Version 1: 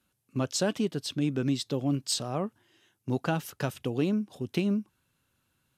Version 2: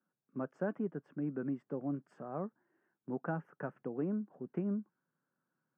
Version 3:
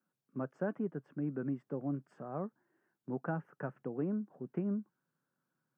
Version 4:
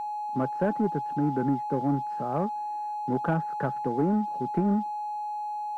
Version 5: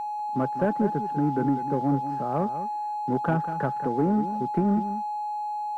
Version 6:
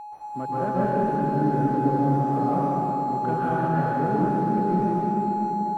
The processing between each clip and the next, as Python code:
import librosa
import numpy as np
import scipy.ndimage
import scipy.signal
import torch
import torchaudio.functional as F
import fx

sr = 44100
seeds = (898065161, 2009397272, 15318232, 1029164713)

y1 = scipy.signal.sosfilt(scipy.signal.ellip(3, 1.0, 40, [160.0, 1600.0], 'bandpass', fs=sr, output='sos'), x)
y1 = y1 * 10.0 ** (-7.5 / 20.0)
y2 = fx.peak_eq(y1, sr, hz=130.0, db=4.5, octaves=0.38)
y3 = fx.env_lowpass_down(y2, sr, base_hz=2000.0, full_db=-34.0)
y3 = y3 + 10.0 ** (-41.0 / 20.0) * np.sin(2.0 * np.pi * 840.0 * np.arange(len(y3)) / sr)
y3 = fx.leveller(y3, sr, passes=1)
y3 = y3 * 10.0 ** (7.0 / 20.0)
y4 = y3 + 10.0 ** (-11.5 / 20.0) * np.pad(y3, (int(195 * sr / 1000.0), 0))[:len(y3)]
y4 = y4 * 10.0 ** (1.5 / 20.0)
y5 = fx.rev_plate(y4, sr, seeds[0], rt60_s=3.9, hf_ratio=0.95, predelay_ms=115, drr_db=-10.0)
y5 = y5 * 10.0 ** (-7.5 / 20.0)